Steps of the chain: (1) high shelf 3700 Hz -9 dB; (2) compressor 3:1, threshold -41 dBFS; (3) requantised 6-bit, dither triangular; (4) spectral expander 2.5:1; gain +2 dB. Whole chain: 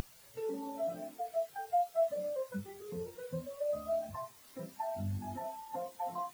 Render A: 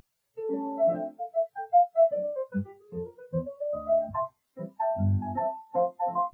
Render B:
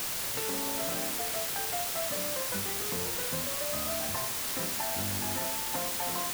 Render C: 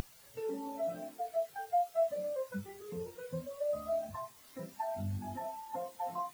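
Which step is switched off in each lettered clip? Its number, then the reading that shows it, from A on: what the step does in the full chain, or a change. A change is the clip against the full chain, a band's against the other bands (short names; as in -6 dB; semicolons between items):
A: 2, mean gain reduction 9.5 dB; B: 4, 8 kHz band +21.5 dB; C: 1, 2 kHz band +2.0 dB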